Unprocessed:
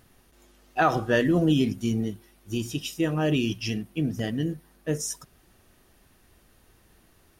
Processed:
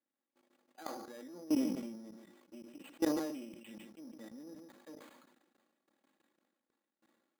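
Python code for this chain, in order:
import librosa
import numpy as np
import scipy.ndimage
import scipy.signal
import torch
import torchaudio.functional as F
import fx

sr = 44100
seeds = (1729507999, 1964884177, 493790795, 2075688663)

p1 = np.where(x < 0.0, 10.0 ** (-12.0 / 20.0) * x, x)
p2 = scipy.signal.sosfilt(scipy.signal.butter(4, 210.0, 'highpass', fs=sr, output='sos'), p1)
p3 = fx.high_shelf(p2, sr, hz=7700.0, db=-9.0)
p4 = p3 + 0.64 * np.pad(p3, (int(3.6 * sr / 1000.0), 0))[:len(p3)]
p5 = fx.dynamic_eq(p4, sr, hz=340.0, q=0.76, threshold_db=-34.0, ratio=4.0, max_db=3)
p6 = fx.tremolo_shape(p5, sr, shape='triangle', hz=6.0, depth_pct=85)
p7 = fx.level_steps(p6, sr, step_db=22)
p8 = p7 + fx.echo_single(p7, sr, ms=145, db=-17.5, dry=0)
p9 = np.repeat(scipy.signal.resample_poly(p8, 1, 8), 8)[:len(p8)]
p10 = fx.sustainer(p9, sr, db_per_s=47.0)
y = p10 * librosa.db_to_amplitude(-5.5)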